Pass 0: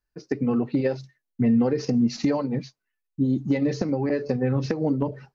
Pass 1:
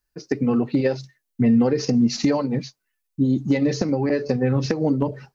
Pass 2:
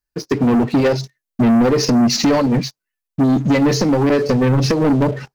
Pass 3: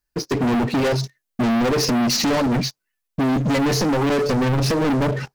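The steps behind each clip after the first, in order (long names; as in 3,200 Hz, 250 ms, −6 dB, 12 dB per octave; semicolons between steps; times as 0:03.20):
high-shelf EQ 4,300 Hz +8 dB; level +3 dB
leveller curve on the samples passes 3
soft clipping −21.5 dBFS, distortion −10 dB; level +4 dB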